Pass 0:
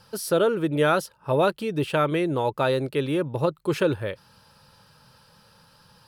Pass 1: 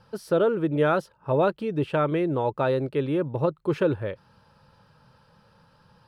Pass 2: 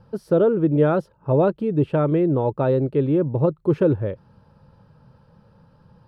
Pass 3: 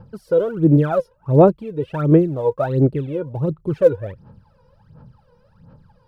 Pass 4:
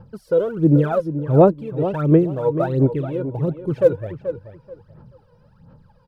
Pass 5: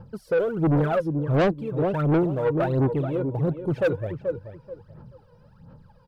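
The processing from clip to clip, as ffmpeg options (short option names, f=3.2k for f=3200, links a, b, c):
-af "lowpass=f=1.4k:p=1"
-af "tiltshelf=f=880:g=8"
-af "aphaser=in_gain=1:out_gain=1:delay=2.1:decay=0.79:speed=1.4:type=sinusoidal,volume=-4.5dB"
-filter_complex "[0:a]asplit=2[a][b];[b]adelay=432,lowpass=f=3.3k:p=1,volume=-11dB,asplit=2[c][d];[d]adelay=432,lowpass=f=3.3k:p=1,volume=0.22,asplit=2[e][f];[f]adelay=432,lowpass=f=3.3k:p=1,volume=0.22[g];[a][c][e][g]amix=inputs=4:normalize=0,volume=-1dB"
-af "asoftclip=type=tanh:threshold=-17dB"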